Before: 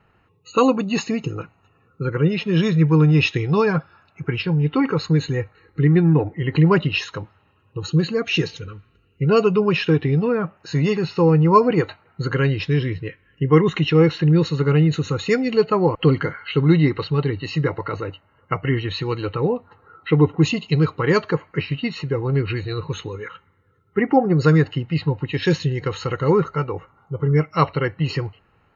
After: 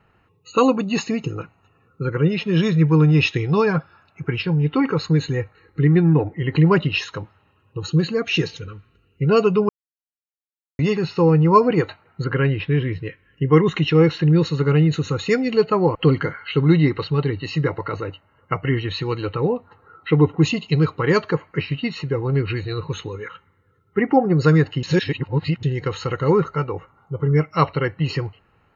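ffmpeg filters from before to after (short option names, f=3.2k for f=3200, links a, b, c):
-filter_complex "[0:a]asettb=1/sr,asplit=3[a][b][c];[a]atrim=end=12.244[d];[b]atrim=start=12.24:end=12.93,asetpts=PTS-STARTPTS,afade=t=in:d=0.004:c=qsin,afade=t=out:st=0.686:d=0.004:c=qsin,lowpass=f=3.1k:w=0.5412,lowpass=f=3.1k:w=1.3066[e];[c]atrim=start=12.926[f];[d][e]acrossfade=d=0.004:c1=hsin:c2=qsin[g];[g][f]acrossfade=d=0.004:c1=qsin:c2=hsin,asplit=5[h][i][j][k][l];[h]atrim=end=9.69,asetpts=PTS-STARTPTS,afade=t=out:st=9.686:d=0.004:c=hsin[m];[i]atrim=start=9.69:end=10.79,asetpts=PTS-STARTPTS,volume=0[n];[j]atrim=start=10.79:end=24.832,asetpts=PTS-STARTPTS,afade=t=in:d=0.004:c=hsin[o];[k]atrim=start=24.828:end=25.632,asetpts=PTS-STARTPTS,areverse[p];[l]atrim=start=25.628[q];[m][n][o]concat=n=3:v=0:a=1[r];[r][p]acrossfade=d=0.004:c1=hsin:c2=hsin[s];[s][q]acrossfade=d=0.004:c1=hsin:c2=hsin"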